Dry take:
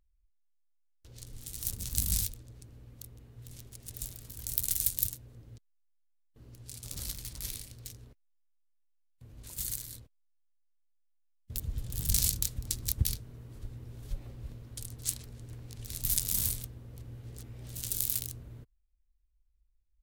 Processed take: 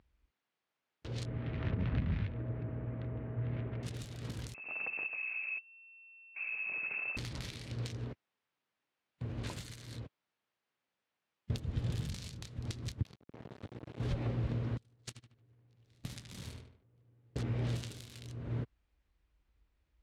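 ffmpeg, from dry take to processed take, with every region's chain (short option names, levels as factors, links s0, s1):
-filter_complex "[0:a]asettb=1/sr,asplit=3[s0][s1][s2];[s0]atrim=end=1.254[s3];[s1]atrim=start=1.25:end=3.83,asetpts=PTS-STARTPTS,afade=t=in:d=0.004:c=qsin,afade=t=out:st=2.576:d=0.004:c=qsin,lowpass=f=2200:w=0.5412,lowpass=f=2200:w=1.3066,aeval=exprs='val(0)+0.000316*sin(2*PI*640*n/s)':c=same[s4];[s2]atrim=start=3.826[s5];[s3][s4]acrossfade=d=0.004:c1=hsin:c2=qsin[s6];[s6][s5]acrossfade=d=0.004:c1=qsin:c2=hsin,asettb=1/sr,asplit=3[s7][s8][s9];[s7]atrim=end=4.544[s10];[s8]atrim=start=4.54:end=7.17,asetpts=PTS-STARTPTS,afade=t=in:d=0.004:c=qsin,afade=t=out:st=2.626:d=0.004:c=qsin,lowpass=f=2300:t=q:w=0.5098,lowpass=f=2300:t=q:w=0.6013,lowpass=f=2300:t=q:w=0.9,lowpass=f=2300:t=q:w=2.563,afreqshift=-2700,acompressor=threshold=0.00398:ratio=10:attack=3.2:release=140:knee=1:detection=peak[s11];[s9]atrim=start=7.166[s12];[s10][s11]acrossfade=d=0.004:c1=hsin:c2=qsin[s13];[s13][s12]acrossfade=d=0.004:c1=qsin:c2=hsin,asettb=1/sr,asplit=3[s14][s15][s16];[s14]atrim=end=13.024[s17];[s15]atrim=start=13.02:end=14,asetpts=PTS-STARTPTS,afade=t=in:d=0.004:c=qsin,afade=t=out:st=0.976:d=0.004:c=qsin,highpass=65,acrossover=split=1700|5000[s18][s19][s20];[s18]acompressor=threshold=0.00447:ratio=4[s21];[s19]acompressor=threshold=0.00178:ratio=4[s22];[s20]acompressor=threshold=0.00355:ratio=4[s23];[s21][s22][s23]amix=inputs=3:normalize=0,aeval=exprs='sgn(val(0))*max(abs(val(0))-0.00398,0)':c=same[s24];[s16]atrim=start=13.996[s25];[s17][s24]acrossfade=d=0.004:c1=hsin:c2=qsin[s26];[s26][s25]acrossfade=d=0.004:c1=qsin:c2=hsin,asettb=1/sr,asplit=3[s27][s28][s29];[s27]atrim=end=14.774[s30];[s28]atrim=start=14.77:end=17.36,asetpts=PTS-STARTPTS,afade=t=in:d=0.004:c=qsin,afade=t=out:st=2.586:d=0.004:c=qsin,agate=range=0.0141:threshold=0.02:ratio=16:release=100:detection=peak,asplit=2[s31][s32];[s32]adelay=74,lowpass=f=3000:p=1,volume=0.596,asplit=2[s33][s34];[s34]adelay=74,lowpass=f=3000:p=1,volume=0.29,asplit=2[s35][s36];[s36]adelay=74,lowpass=f=3000:p=1,volume=0.29,asplit=2[s37][s38];[s38]adelay=74,lowpass=f=3000:p=1,volume=0.29[s39];[s31][s33][s35][s37][s39]amix=inputs=5:normalize=0,atrim=end_sample=114219[s40];[s29]atrim=start=17.356[s41];[s30][s40]acrossfade=d=0.004:c1=hsin:c2=qsin[s42];[s42][s41]acrossfade=d=0.004:c1=qsin:c2=hsin,highpass=110,acompressor=threshold=0.00562:ratio=12,lowpass=2800,volume=6.31"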